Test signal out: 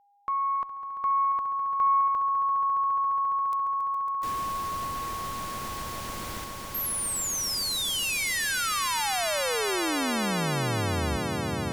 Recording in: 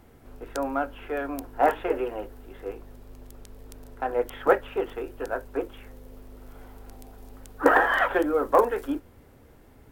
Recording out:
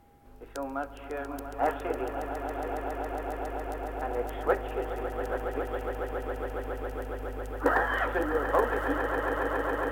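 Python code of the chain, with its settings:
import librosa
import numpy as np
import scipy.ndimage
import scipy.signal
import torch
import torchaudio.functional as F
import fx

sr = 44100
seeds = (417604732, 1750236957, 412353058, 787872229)

y = x + 10.0 ** (-55.0 / 20.0) * np.sin(2.0 * np.pi * 810.0 * np.arange(len(x)) / sr)
y = fx.cheby_harmonics(y, sr, harmonics=(6,), levels_db=(-35,), full_scale_db=-4.0)
y = fx.echo_swell(y, sr, ms=138, loudest=8, wet_db=-10.5)
y = F.gain(torch.from_numpy(y), -6.5).numpy()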